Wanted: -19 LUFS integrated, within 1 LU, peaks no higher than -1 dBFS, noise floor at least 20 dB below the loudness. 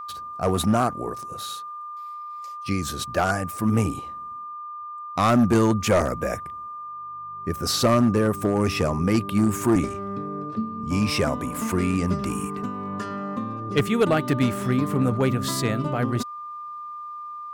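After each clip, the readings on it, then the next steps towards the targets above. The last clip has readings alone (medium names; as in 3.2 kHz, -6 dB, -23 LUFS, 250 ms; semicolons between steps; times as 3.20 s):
clipped samples 0.8%; clipping level -13.0 dBFS; steady tone 1.2 kHz; tone level -33 dBFS; loudness -24.0 LUFS; peak level -13.0 dBFS; loudness target -19.0 LUFS
-> clip repair -13 dBFS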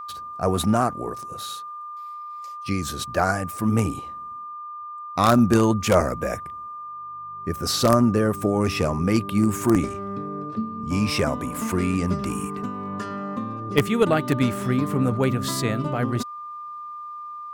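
clipped samples 0.0%; steady tone 1.2 kHz; tone level -33 dBFS
-> band-stop 1.2 kHz, Q 30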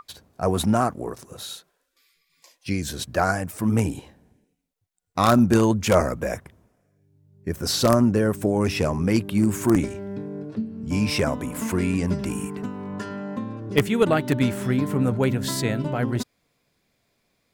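steady tone not found; loudness -23.5 LUFS; peak level -3.5 dBFS; loudness target -19.0 LUFS
-> trim +4.5 dB; peak limiter -1 dBFS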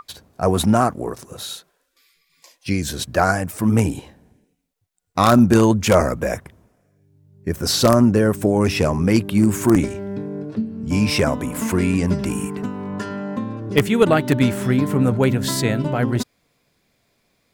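loudness -19.0 LUFS; peak level -1.0 dBFS; noise floor -67 dBFS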